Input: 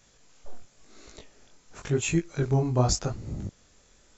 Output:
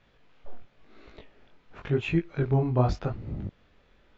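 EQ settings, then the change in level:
low-pass filter 3,300 Hz 24 dB per octave
0.0 dB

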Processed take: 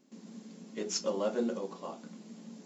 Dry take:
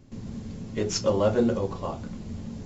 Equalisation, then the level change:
linear-phase brick-wall high-pass 170 Hz
high-shelf EQ 5,500 Hz +8.5 dB
−9.0 dB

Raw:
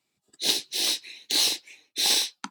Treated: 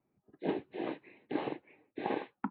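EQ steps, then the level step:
Gaussian smoothing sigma 4.1 samples
high-frequency loss of the air 460 metres
tilt shelving filter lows +4.5 dB, about 1,100 Hz
+2.5 dB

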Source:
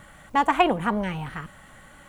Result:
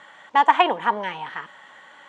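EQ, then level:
loudspeaker in its box 370–6,700 Hz, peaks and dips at 430 Hz +3 dB, 940 Hz +10 dB, 1,800 Hz +7 dB, 3,300 Hz +8 dB
−1.0 dB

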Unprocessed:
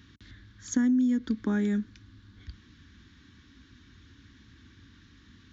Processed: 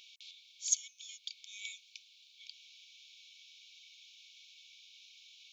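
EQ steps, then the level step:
linear-phase brick-wall high-pass 2,200 Hz
+7.5 dB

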